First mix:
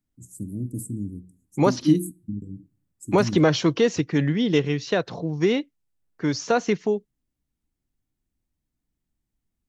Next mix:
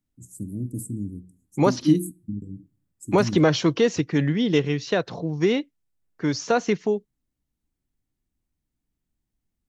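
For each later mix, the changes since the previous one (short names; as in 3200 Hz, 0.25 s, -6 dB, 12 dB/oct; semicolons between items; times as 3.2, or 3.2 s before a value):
none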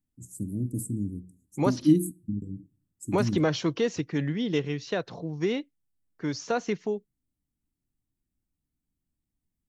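second voice -6.5 dB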